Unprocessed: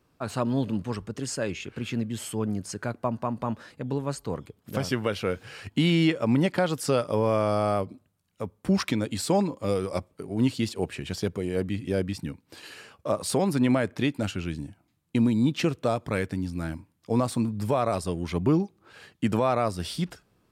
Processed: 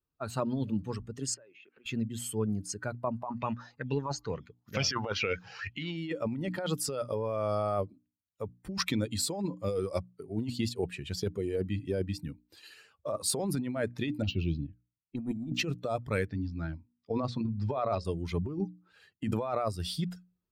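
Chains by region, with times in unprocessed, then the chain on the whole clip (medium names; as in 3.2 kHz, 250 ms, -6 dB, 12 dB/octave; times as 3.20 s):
1.34–1.86 s: band-pass 340–2700 Hz + compression 5:1, threshold -44 dBFS
3.23–5.97 s: resonant high shelf 7.4 kHz -7 dB, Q 3 + sweeping bell 2.2 Hz 760–2700 Hz +14 dB
14.22–15.57 s: level-controlled noise filter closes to 1.5 kHz, open at -23 dBFS + waveshaping leveller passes 1 + touch-sensitive phaser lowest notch 590 Hz, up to 4.6 kHz, full sweep at -17.5 dBFS
16.25–18.05 s: low-pass 5.5 kHz 24 dB/octave + hum notches 60/120/180/240/300/360/420/480/540 Hz
whole clip: expander on every frequency bin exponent 1.5; hum notches 60/120/180/240/300 Hz; compressor with a negative ratio -31 dBFS, ratio -1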